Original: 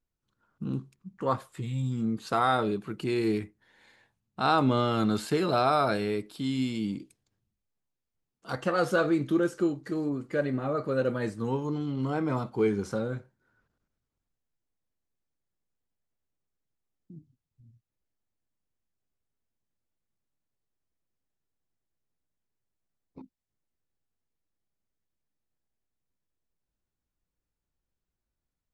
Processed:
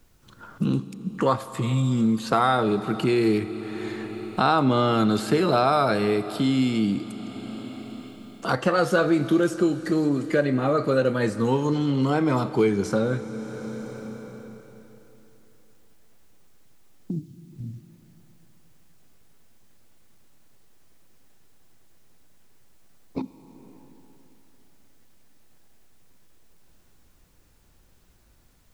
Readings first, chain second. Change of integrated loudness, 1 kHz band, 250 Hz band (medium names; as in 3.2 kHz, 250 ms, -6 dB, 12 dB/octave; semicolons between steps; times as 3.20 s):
+5.0 dB, +5.0 dB, +7.0 dB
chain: Schroeder reverb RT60 3.2 s, combs from 28 ms, DRR 15 dB; three bands compressed up and down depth 70%; trim +6 dB